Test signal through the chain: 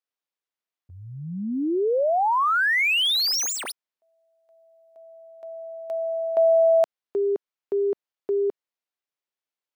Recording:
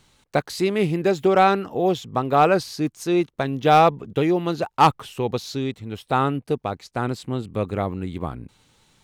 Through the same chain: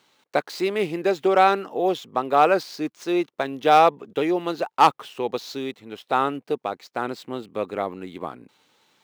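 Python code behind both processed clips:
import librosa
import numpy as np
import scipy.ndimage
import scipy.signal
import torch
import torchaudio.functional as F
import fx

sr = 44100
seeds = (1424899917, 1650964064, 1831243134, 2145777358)

y = scipy.ndimage.median_filter(x, 5, mode='constant')
y = scipy.signal.sosfilt(scipy.signal.butter(2, 320.0, 'highpass', fs=sr, output='sos'), y)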